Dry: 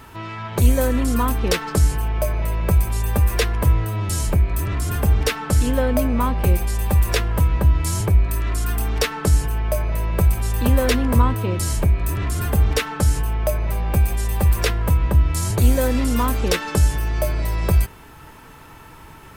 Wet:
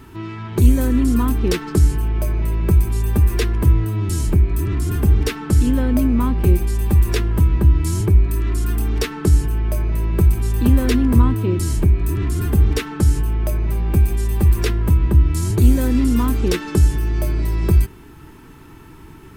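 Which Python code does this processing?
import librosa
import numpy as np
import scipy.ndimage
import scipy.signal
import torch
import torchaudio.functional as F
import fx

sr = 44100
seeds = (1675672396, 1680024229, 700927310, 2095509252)

y = fx.low_shelf_res(x, sr, hz=440.0, db=6.0, q=3.0)
y = y * 10.0 ** (-3.5 / 20.0)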